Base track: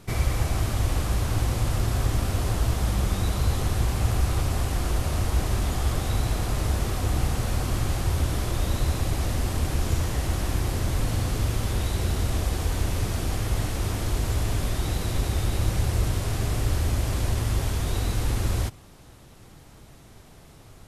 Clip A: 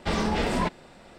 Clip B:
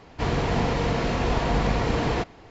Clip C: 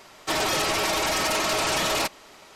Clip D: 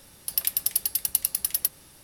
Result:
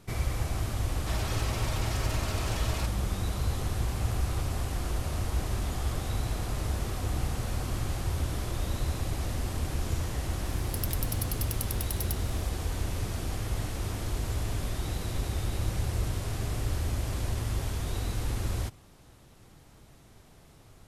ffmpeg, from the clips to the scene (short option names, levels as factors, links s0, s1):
-filter_complex "[0:a]volume=0.501[s0];[4:a]acompressor=threshold=0.0224:ratio=2.5:attack=2.4:release=252:knee=1:detection=peak[s1];[3:a]atrim=end=2.55,asetpts=PTS-STARTPTS,volume=0.2,afade=t=in:d=0.004:c=hsin,afade=t=out:st=2.546:d=0.004:c=hsin,adelay=790[s2];[s1]atrim=end=2.03,asetpts=PTS-STARTPTS,volume=0.891,afade=t=in:d=0.004:c=hsin,afade=t=out:st=2.026:d=0.004:c=hsin,adelay=10460[s3];[s0][s2][s3]amix=inputs=3:normalize=0"